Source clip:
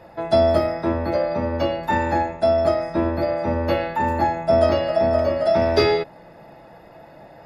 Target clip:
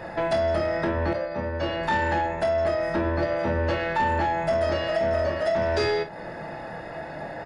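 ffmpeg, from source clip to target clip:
ffmpeg -i in.wav -filter_complex "[0:a]equalizer=frequency=1700:width=3.8:gain=8,acompressor=threshold=-28dB:ratio=6,asettb=1/sr,asplit=3[link_01][link_02][link_03];[link_01]atrim=end=1.134[link_04];[link_02]atrim=start=1.13:end=1.63,asetpts=PTS-STARTPTS,afade=type=in:duration=0.004:curve=qsin,afade=type=out:start_time=0.496:duration=0.004:curve=qsin,agate=range=-33dB:threshold=-25dB:ratio=3:detection=peak[link_05];[link_03]atrim=start=1.626[link_06];[link_04][link_05]acrossfade=duration=0.004:curve1=hsin:curve2=qsin[link_07];[link_07][link_06]acrossfade=duration=0.004:curve1=qsin:curve2=hsin,asoftclip=type=tanh:threshold=-26.5dB,aecho=1:1:26|51:0.447|0.237,aresample=22050,aresample=44100,asettb=1/sr,asplit=3[link_08][link_09][link_10];[link_08]atrim=end=4.374[link_11];[link_09]atrim=start=4.37:end=5.49,asetpts=PTS-STARTPTS,afade=type=in:duration=0.004:curve=qsin,afade=type=out:start_time=1.116:duration=0.004:curve=qsin,highshelf=frequency=6100:gain=5.5[link_12];[link_10]atrim=start=5.486[link_13];[link_11][link_12]acrossfade=duration=0.004:curve1=hsin:curve2=qsin[link_14];[link_14][link_13]acrossfade=duration=0.004:curve1=qsin:curve2=hsin,volume=7.5dB" out.wav

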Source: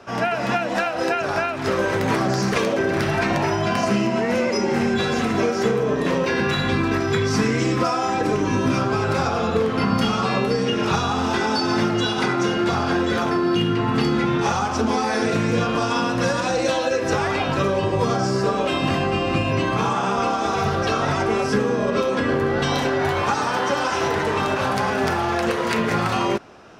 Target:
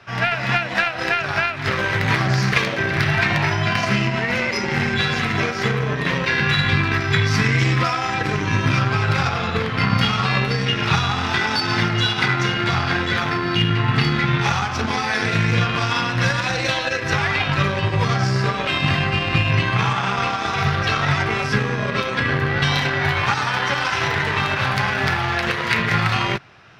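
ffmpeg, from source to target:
ffmpeg -i in.wav -af "aeval=exprs='0.447*(cos(1*acos(clip(val(0)/0.447,-1,1)))-cos(1*PI/2))+0.0251*(cos(7*acos(clip(val(0)/0.447,-1,1)))-cos(7*PI/2))':channel_layout=same,equalizer=frequency=125:width_type=o:width=1:gain=11,equalizer=frequency=250:width_type=o:width=1:gain=-6,equalizer=frequency=500:width_type=o:width=1:gain=-5,equalizer=frequency=2000:width_type=o:width=1:gain=9,equalizer=frequency=4000:width_type=o:width=1:gain=6,equalizer=frequency=8000:width_type=o:width=1:gain=-5" out.wav

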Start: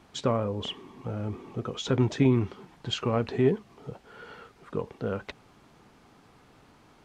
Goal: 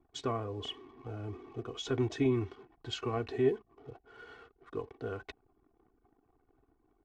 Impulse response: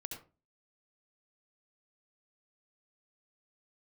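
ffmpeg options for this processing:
-af "aecho=1:1:2.7:0.8,anlmdn=0.00398,volume=-8.5dB"

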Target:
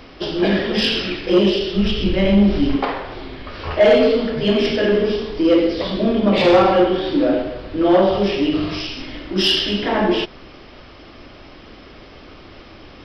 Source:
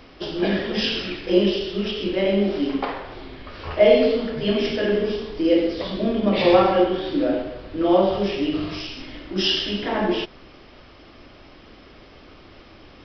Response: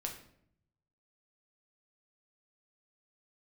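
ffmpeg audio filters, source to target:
-filter_complex "[0:a]asplit=3[link_01][link_02][link_03];[link_01]afade=type=out:start_time=1.75:duration=0.02[link_04];[link_02]asubboost=boost=9.5:cutoff=150,afade=type=in:start_time=1.75:duration=0.02,afade=type=out:start_time=2.75:duration=0.02[link_05];[link_03]afade=type=in:start_time=2.75:duration=0.02[link_06];[link_04][link_05][link_06]amix=inputs=3:normalize=0,asoftclip=type=tanh:threshold=-11.5dB,volume=5.5dB"

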